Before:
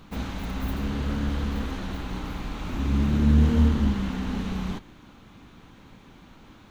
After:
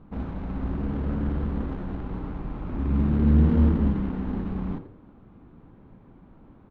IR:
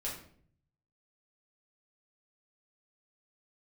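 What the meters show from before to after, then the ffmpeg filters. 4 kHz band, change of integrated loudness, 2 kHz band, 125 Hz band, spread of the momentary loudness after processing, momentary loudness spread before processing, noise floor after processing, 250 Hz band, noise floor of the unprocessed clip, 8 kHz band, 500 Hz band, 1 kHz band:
under -15 dB, 0.0 dB, -7.5 dB, +0.5 dB, 15 LU, 14 LU, -53 dBFS, +0.5 dB, -51 dBFS, no reading, +1.0 dB, -3.0 dB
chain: -filter_complex "[0:a]asplit=4[s0][s1][s2][s3];[s1]adelay=85,afreqshift=94,volume=0.282[s4];[s2]adelay=170,afreqshift=188,volume=0.0902[s5];[s3]adelay=255,afreqshift=282,volume=0.0288[s6];[s0][s4][s5][s6]amix=inputs=4:normalize=0,adynamicsmooth=sensitivity=1:basefreq=930"

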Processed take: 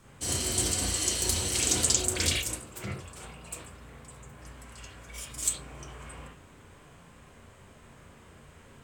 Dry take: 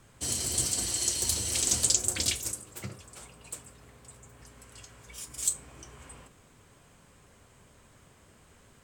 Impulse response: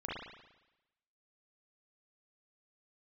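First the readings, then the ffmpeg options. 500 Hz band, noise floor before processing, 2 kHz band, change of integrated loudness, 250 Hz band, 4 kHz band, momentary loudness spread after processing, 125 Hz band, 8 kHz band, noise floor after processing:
+6.0 dB, -59 dBFS, +5.5 dB, 0.0 dB, +5.5 dB, +2.0 dB, 21 LU, +5.0 dB, -0.5 dB, -54 dBFS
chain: -filter_complex "[1:a]atrim=start_sample=2205,atrim=end_sample=4410[s0];[0:a][s0]afir=irnorm=-1:irlink=0,volume=1.68"

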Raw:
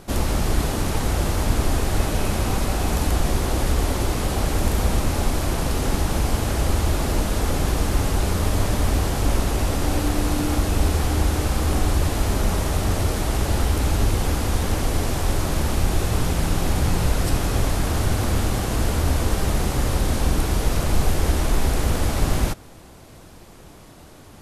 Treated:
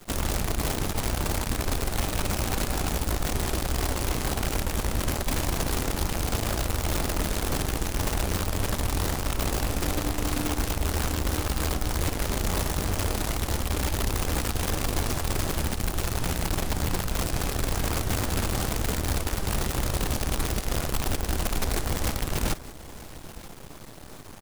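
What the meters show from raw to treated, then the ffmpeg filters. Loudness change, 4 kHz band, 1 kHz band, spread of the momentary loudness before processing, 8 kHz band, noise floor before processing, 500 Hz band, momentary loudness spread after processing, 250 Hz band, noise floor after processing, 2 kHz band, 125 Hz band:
-5.0 dB, -2.0 dB, -4.5 dB, 2 LU, -2.0 dB, -44 dBFS, -5.5 dB, 1 LU, -6.0 dB, -42 dBFS, -3.0 dB, -7.0 dB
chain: -af "areverse,acompressor=threshold=0.0398:ratio=10,areverse,acrusher=bits=6:dc=4:mix=0:aa=0.000001,aecho=1:1:932:0.126,volume=1.58"

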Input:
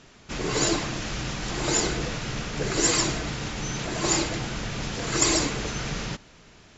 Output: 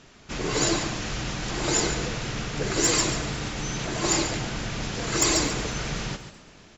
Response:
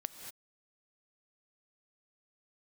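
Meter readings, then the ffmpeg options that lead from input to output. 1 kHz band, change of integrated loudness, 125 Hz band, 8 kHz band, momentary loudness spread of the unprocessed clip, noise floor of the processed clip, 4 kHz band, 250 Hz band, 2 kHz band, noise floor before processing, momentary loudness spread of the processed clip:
+0.5 dB, +0.5 dB, +0.5 dB, no reading, 10 LU, -51 dBFS, +0.5 dB, 0.0 dB, +0.5 dB, -53 dBFS, 10 LU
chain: -filter_complex "[0:a]asoftclip=type=hard:threshold=0.224,asplit=5[s0][s1][s2][s3][s4];[s1]adelay=246,afreqshift=57,volume=0.0631[s5];[s2]adelay=492,afreqshift=114,volume=0.0398[s6];[s3]adelay=738,afreqshift=171,volume=0.0251[s7];[s4]adelay=984,afreqshift=228,volume=0.0158[s8];[s0][s5][s6][s7][s8]amix=inputs=5:normalize=0,asplit=2[s9][s10];[1:a]atrim=start_sample=2205,atrim=end_sample=6615,adelay=140[s11];[s10][s11]afir=irnorm=-1:irlink=0,volume=0.376[s12];[s9][s12]amix=inputs=2:normalize=0"

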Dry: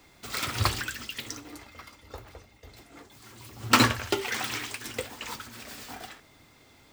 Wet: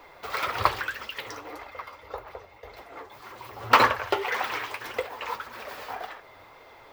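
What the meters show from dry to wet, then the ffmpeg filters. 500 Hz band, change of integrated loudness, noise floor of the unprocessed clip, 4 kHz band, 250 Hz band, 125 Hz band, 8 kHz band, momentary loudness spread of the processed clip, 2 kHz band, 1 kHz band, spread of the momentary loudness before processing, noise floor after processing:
+4.5 dB, +1.5 dB, -58 dBFS, -3.5 dB, -8.0 dB, -9.0 dB, -11.0 dB, 22 LU, +2.5 dB, +6.5 dB, 24 LU, -51 dBFS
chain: -filter_complex "[0:a]equalizer=f=125:t=o:w=1:g=-4,equalizer=f=250:t=o:w=1:g=-9,equalizer=f=500:t=o:w=1:g=11,equalizer=f=1000:t=o:w=1:g=10,equalizer=f=2000:t=o:w=1:g=4,equalizer=f=8000:t=o:w=1:g=-11,asplit=2[s0][s1];[s1]acompressor=threshold=0.01:ratio=6,volume=0.891[s2];[s0][s2]amix=inputs=2:normalize=0,flanger=delay=2.7:depth=9:regen=49:speed=1.8:shape=triangular"

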